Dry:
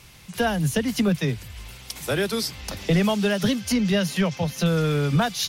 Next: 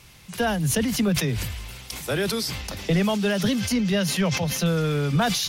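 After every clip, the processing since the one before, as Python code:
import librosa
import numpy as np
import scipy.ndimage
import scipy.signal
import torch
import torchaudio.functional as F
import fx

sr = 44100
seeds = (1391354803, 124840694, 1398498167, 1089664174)

y = fx.sustainer(x, sr, db_per_s=34.0)
y = F.gain(torch.from_numpy(y), -1.5).numpy()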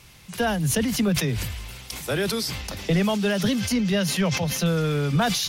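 y = x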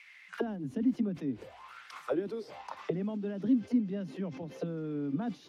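y = fx.auto_wah(x, sr, base_hz=270.0, top_hz=2200.0, q=6.4, full_db=-20.5, direction='down')
y = fx.low_shelf(y, sr, hz=480.0, db=-9.0)
y = F.gain(torch.from_numpy(y), 8.0).numpy()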